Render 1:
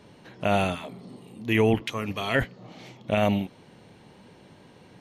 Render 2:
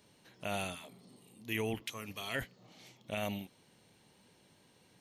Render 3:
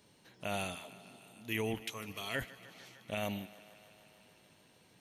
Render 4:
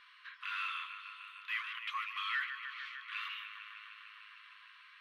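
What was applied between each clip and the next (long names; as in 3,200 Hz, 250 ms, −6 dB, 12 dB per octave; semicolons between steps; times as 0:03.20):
first-order pre-emphasis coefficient 0.8; level −1.5 dB
feedback echo with a high-pass in the loop 151 ms, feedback 82%, high-pass 260 Hz, level −18 dB
mid-hump overdrive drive 25 dB, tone 5,000 Hz, clips at −21.5 dBFS; linear-phase brick-wall high-pass 1,000 Hz; high-frequency loss of the air 440 metres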